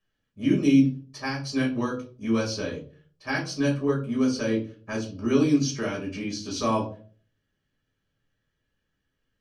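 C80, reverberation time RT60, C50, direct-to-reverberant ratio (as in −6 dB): 15.0 dB, 0.45 s, 9.5 dB, −3.5 dB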